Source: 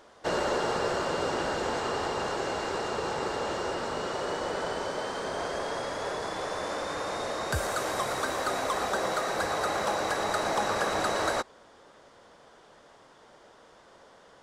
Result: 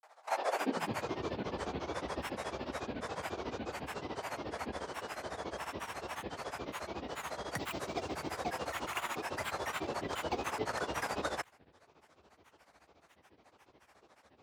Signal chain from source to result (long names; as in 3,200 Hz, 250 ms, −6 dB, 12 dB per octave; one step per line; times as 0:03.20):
granular cloud 95 ms, grains 14 per second, spray 37 ms, pitch spread up and down by 12 semitones
high-pass filter sweep 720 Hz → 68 Hz, 0:00.40–0:01.08
level −6 dB